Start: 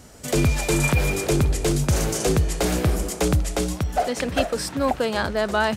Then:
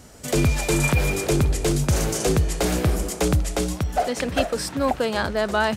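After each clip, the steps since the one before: no audible change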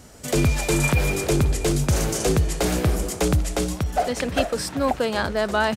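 delay 777 ms -22.5 dB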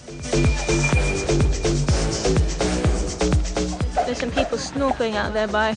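knee-point frequency compression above 3.7 kHz 1.5:1; reverse echo 250 ms -16.5 dB; trim +1 dB

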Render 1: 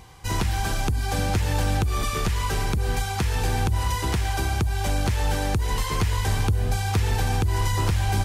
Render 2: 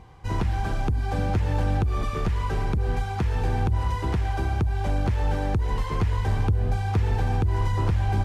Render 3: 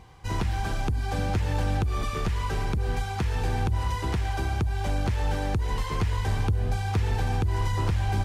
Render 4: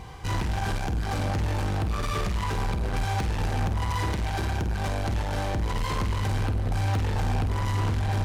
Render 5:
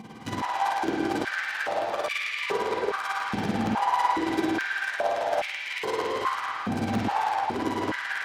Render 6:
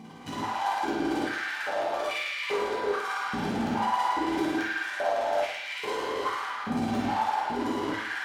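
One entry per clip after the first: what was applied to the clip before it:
low-pass 1.1 kHz 6 dB/octave
treble shelf 2.2 kHz +8 dB; trim -2.5 dB
peak limiter -21.5 dBFS, peak gain reduction 4 dB; saturation -34.5 dBFS, distortion -8 dB; flutter echo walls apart 8.5 m, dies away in 0.36 s; trim +9 dB
tremolo 18 Hz, depth 92%; reverberation, pre-delay 3 ms, DRR -4 dB; step-sequenced high-pass 2.4 Hz 220–2300 Hz
plate-style reverb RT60 0.59 s, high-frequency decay 0.9×, DRR -3 dB; trim -6.5 dB

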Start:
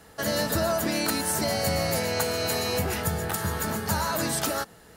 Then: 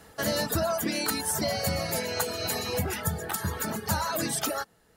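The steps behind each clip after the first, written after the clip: reverb removal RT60 1.6 s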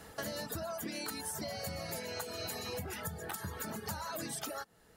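compression 6:1, threshold -38 dBFS, peak gain reduction 14.5 dB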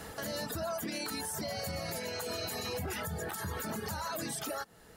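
peak limiter -35.5 dBFS, peak gain reduction 9.5 dB; trim +7 dB

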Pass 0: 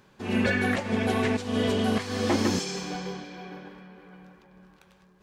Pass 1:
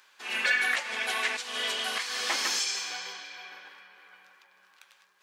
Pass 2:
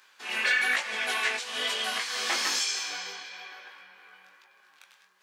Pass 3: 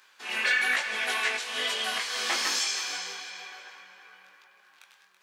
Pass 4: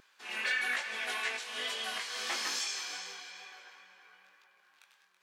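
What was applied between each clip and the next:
high-pass 1.5 kHz 12 dB/octave; trim +5.5 dB
chorus 1.1 Hz, delay 18.5 ms, depth 4.4 ms; trim +4 dB
thinning echo 330 ms, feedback 30%, level -11.5 dB
wow and flutter 23 cents; trim -7 dB

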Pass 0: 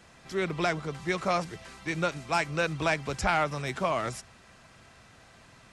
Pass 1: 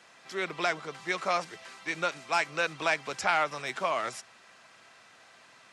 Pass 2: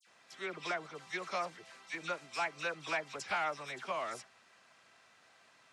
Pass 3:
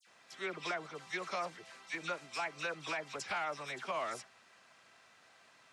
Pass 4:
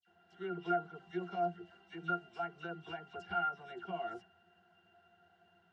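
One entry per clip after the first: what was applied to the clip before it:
frequency weighting A
phase dispersion lows, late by 72 ms, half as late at 2.3 kHz; trim -8 dB
peak limiter -28.5 dBFS, peak gain reduction 6 dB; trim +1 dB
pitch-class resonator F, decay 0.14 s; trim +11.5 dB

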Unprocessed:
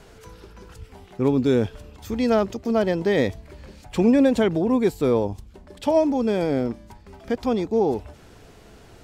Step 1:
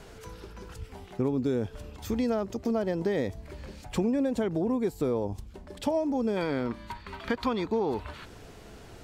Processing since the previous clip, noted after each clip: time-frequency box 6.37–8.25 s, 880–4700 Hz +11 dB; dynamic bell 2.9 kHz, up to -5 dB, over -43 dBFS, Q 0.92; compression 5:1, threshold -25 dBFS, peak gain reduction 11 dB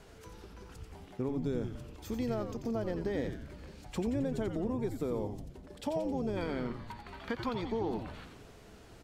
frequency-shifting echo 88 ms, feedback 55%, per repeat -120 Hz, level -7 dB; trim -7 dB

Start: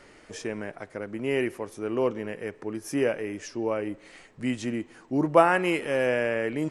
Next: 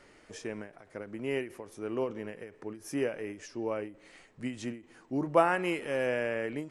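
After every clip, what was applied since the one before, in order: endings held to a fixed fall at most 150 dB/s; trim -5.5 dB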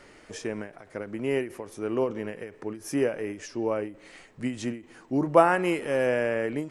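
dynamic bell 2.7 kHz, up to -4 dB, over -47 dBFS, Q 1; trim +6 dB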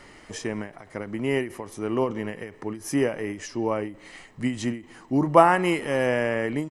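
comb 1 ms, depth 33%; trim +3.5 dB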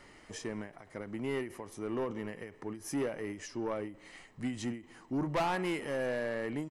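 saturation -19.5 dBFS, distortion -7 dB; trim -7.5 dB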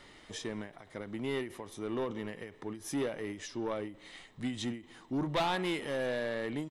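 peaking EQ 3.6 kHz +13.5 dB 0.31 oct

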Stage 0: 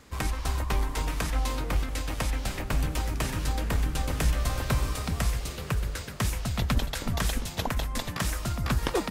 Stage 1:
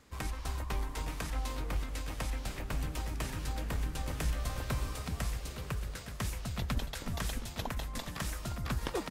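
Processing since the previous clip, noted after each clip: delay 861 ms -13 dB; trim -8 dB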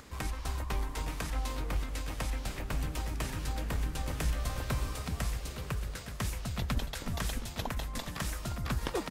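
upward compressor, threshold -46 dBFS; trim +1.5 dB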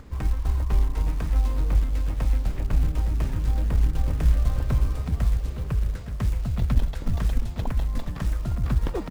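tilt EQ -3 dB/octave; short-mantissa float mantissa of 4-bit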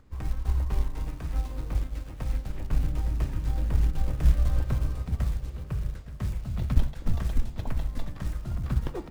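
on a send at -9 dB: reverberation RT60 0.60 s, pre-delay 3 ms; on the sum: upward expansion 1.5:1, over -40 dBFS

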